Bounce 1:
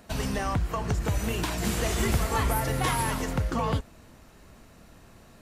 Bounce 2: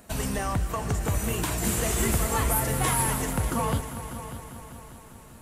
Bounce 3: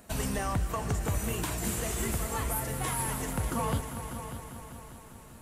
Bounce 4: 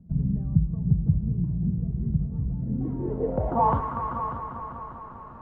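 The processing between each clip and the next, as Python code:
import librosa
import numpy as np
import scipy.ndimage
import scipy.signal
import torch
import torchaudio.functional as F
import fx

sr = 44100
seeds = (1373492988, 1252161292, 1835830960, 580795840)

y1 = fx.high_shelf_res(x, sr, hz=6600.0, db=6.5, q=1.5)
y1 = fx.echo_heads(y1, sr, ms=198, heads='all three', feedback_pct=55, wet_db=-16)
y2 = fx.rider(y1, sr, range_db=3, speed_s=0.5)
y2 = y2 * librosa.db_to_amplitude(-5.0)
y3 = fx.filter_sweep_lowpass(y2, sr, from_hz=160.0, to_hz=1100.0, start_s=2.53, end_s=3.79, q=5.3)
y3 = y3 * librosa.db_to_amplitude(3.0)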